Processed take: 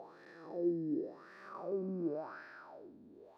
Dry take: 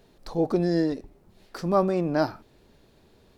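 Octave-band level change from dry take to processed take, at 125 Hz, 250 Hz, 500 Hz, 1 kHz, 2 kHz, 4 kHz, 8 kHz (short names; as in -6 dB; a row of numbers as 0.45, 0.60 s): -18.0 dB, -12.0 dB, -13.5 dB, -18.5 dB, -13.0 dB, under -25 dB, n/a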